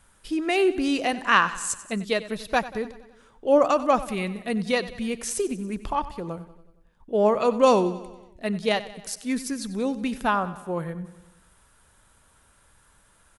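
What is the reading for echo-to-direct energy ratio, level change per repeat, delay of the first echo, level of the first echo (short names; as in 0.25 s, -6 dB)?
-14.0 dB, -4.5 dB, 93 ms, -16.0 dB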